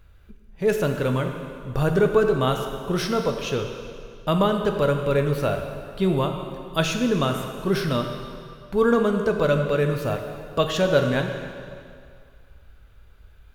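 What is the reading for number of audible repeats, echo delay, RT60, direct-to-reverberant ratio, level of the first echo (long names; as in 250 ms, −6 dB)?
no echo audible, no echo audible, 2.2 s, 4.0 dB, no echo audible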